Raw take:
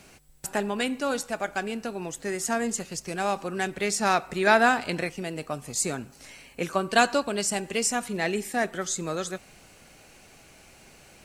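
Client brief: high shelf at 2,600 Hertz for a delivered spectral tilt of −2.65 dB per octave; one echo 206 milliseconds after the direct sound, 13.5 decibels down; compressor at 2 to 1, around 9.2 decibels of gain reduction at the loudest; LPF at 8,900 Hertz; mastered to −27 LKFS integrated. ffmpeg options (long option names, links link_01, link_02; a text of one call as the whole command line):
ffmpeg -i in.wav -af "lowpass=8900,highshelf=frequency=2600:gain=4.5,acompressor=threshold=-30dB:ratio=2,aecho=1:1:206:0.211,volume=4.5dB" out.wav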